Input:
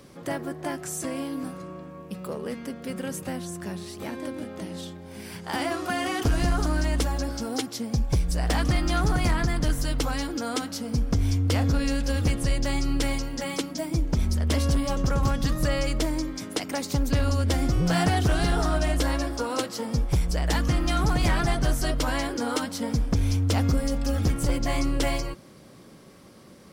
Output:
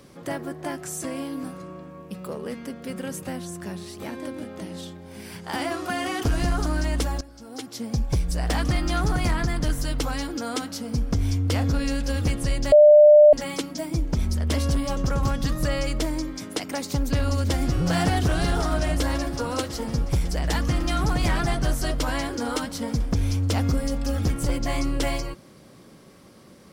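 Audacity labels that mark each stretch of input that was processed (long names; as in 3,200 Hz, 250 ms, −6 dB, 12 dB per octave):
7.210000	7.850000	fade in quadratic, from −17 dB
12.720000	13.330000	beep over 598 Hz −8 dBFS
16.760000	17.850000	delay throw 550 ms, feedback 85%, level −10.5 dB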